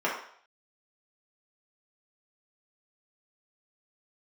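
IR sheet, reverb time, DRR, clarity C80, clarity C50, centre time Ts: 0.60 s, −6.0 dB, 8.0 dB, 4.0 dB, 38 ms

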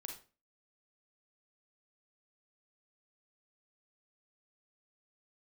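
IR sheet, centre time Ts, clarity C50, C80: 23 ms, 6.0 dB, 12.5 dB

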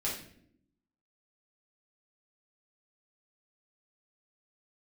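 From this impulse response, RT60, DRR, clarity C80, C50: non-exponential decay, −6.5 dB, 9.0 dB, 4.5 dB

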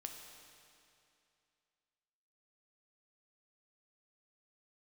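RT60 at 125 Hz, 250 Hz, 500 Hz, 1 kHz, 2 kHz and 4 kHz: 2.6, 2.6, 2.6, 2.6, 2.5, 2.4 seconds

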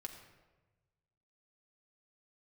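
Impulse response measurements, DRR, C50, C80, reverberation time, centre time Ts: 2.0 dB, 7.0 dB, 8.5 dB, 1.2 s, 26 ms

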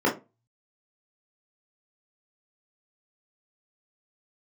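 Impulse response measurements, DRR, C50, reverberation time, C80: −4.0 dB, 11.0 dB, 0.25 s, 19.0 dB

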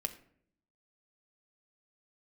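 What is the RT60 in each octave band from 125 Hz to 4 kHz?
0.90, 0.90, 0.70, 0.55, 0.50, 0.35 seconds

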